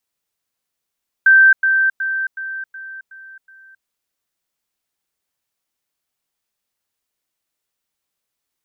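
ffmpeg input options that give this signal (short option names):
-f lavfi -i "aevalsrc='pow(10,(-6-6*floor(t/0.37))/20)*sin(2*PI*1560*t)*clip(min(mod(t,0.37),0.27-mod(t,0.37))/0.005,0,1)':d=2.59:s=44100"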